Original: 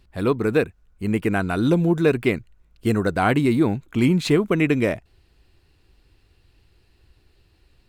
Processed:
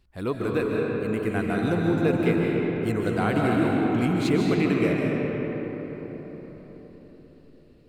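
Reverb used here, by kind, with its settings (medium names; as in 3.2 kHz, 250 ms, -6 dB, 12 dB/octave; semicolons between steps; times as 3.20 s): algorithmic reverb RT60 4.9 s, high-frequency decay 0.45×, pre-delay 105 ms, DRR -2.5 dB; trim -7.5 dB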